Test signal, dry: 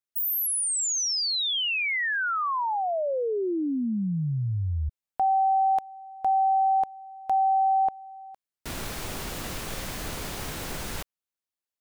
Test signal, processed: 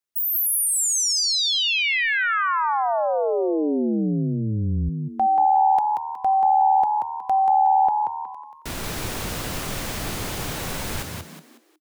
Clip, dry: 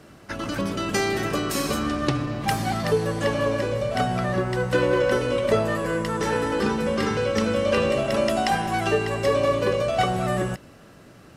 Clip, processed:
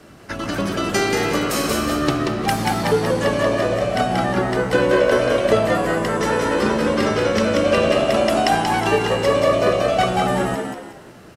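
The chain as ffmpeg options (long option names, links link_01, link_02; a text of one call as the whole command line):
ffmpeg -i in.wav -filter_complex "[0:a]adynamicequalizer=threshold=0.00708:dfrequency=130:dqfactor=3.8:tfrequency=130:tqfactor=3.8:attack=5:release=100:ratio=0.375:range=2.5:mode=cutabove:tftype=bell,asplit=5[link_01][link_02][link_03][link_04][link_05];[link_02]adelay=183,afreqshift=76,volume=-4dB[link_06];[link_03]adelay=366,afreqshift=152,volume=-13.1dB[link_07];[link_04]adelay=549,afreqshift=228,volume=-22.2dB[link_08];[link_05]adelay=732,afreqshift=304,volume=-31.4dB[link_09];[link_01][link_06][link_07][link_08][link_09]amix=inputs=5:normalize=0,volume=3.5dB" out.wav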